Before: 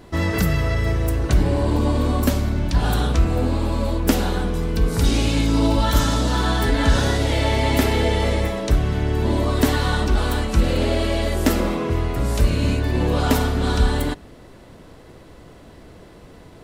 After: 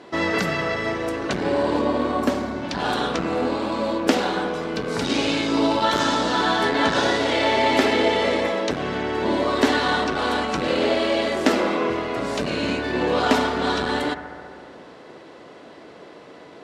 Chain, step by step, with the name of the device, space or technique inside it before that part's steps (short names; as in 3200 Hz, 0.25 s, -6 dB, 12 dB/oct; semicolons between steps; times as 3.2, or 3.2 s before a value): public-address speaker with an overloaded transformer (core saturation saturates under 130 Hz; BPF 310–5100 Hz); 1.8–2.62 bell 11000 Hz -> 2000 Hz -6 dB 2.5 oct; analogue delay 69 ms, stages 1024, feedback 81%, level -12.5 dB; gain +4 dB